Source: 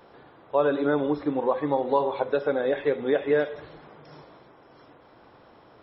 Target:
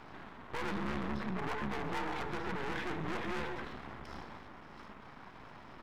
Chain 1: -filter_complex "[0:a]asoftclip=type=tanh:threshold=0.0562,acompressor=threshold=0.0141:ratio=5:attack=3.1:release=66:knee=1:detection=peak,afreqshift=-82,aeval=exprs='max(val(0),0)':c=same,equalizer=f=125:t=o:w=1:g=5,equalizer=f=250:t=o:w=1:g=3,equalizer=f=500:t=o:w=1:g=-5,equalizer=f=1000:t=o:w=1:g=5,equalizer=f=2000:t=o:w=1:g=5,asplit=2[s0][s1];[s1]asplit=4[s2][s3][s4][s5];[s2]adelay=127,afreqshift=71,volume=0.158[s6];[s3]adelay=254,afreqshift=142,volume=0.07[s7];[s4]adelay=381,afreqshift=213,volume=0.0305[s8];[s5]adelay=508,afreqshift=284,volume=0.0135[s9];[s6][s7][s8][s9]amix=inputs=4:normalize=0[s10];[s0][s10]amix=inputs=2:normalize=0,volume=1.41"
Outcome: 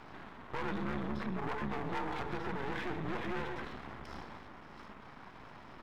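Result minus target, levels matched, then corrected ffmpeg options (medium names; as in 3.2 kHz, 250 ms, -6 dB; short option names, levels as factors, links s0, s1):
saturation: distortion -4 dB
-filter_complex "[0:a]asoftclip=type=tanh:threshold=0.0237,acompressor=threshold=0.0141:ratio=5:attack=3.1:release=66:knee=1:detection=peak,afreqshift=-82,aeval=exprs='max(val(0),0)':c=same,equalizer=f=125:t=o:w=1:g=5,equalizer=f=250:t=o:w=1:g=3,equalizer=f=500:t=o:w=1:g=-5,equalizer=f=1000:t=o:w=1:g=5,equalizer=f=2000:t=o:w=1:g=5,asplit=2[s0][s1];[s1]asplit=4[s2][s3][s4][s5];[s2]adelay=127,afreqshift=71,volume=0.158[s6];[s3]adelay=254,afreqshift=142,volume=0.07[s7];[s4]adelay=381,afreqshift=213,volume=0.0305[s8];[s5]adelay=508,afreqshift=284,volume=0.0135[s9];[s6][s7][s8][s9]amix=inputs=4:normalize=0[s10];[s0][s10]amix=inputs=2:normalize=0,volume=1.41"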